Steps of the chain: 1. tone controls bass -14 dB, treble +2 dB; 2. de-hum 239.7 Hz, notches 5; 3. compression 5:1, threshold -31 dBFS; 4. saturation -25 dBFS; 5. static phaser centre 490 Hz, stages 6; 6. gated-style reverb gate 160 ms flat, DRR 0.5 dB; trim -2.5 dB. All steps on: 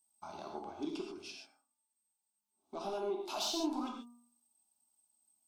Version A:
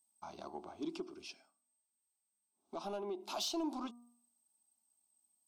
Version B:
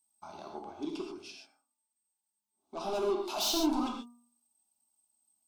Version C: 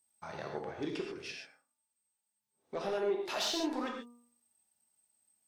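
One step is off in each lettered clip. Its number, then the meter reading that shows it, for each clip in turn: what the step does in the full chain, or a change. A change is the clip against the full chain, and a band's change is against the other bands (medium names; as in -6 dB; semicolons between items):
6, crest factor change -1.5 dB; 3, loudness change +6.5 LU; 5, 2 kHz band +8.0 dB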